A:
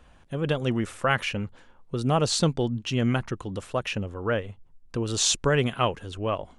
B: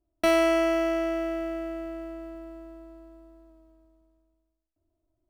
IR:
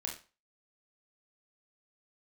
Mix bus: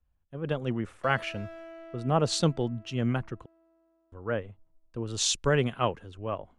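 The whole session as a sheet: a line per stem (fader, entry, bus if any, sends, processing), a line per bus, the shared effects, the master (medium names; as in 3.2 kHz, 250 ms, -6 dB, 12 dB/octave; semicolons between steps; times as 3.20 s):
-4.0 dB, 0.00 s, muted 3.46–4.12 s, no send, three bands expanded up and down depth 70%
-13.5 dB, 0.80 s, no send, high-pass 650 Hz 6 dB/octave; treble shelf 3.8 kHz -10 dB; overload inside the chain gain 27 dB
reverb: none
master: treble shelf 3.7 kHz -8.5 dB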